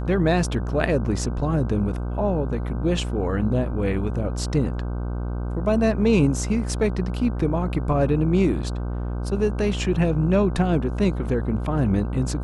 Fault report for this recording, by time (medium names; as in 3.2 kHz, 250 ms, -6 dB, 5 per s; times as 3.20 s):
buzz 60 Hz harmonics 26 -27 dBFS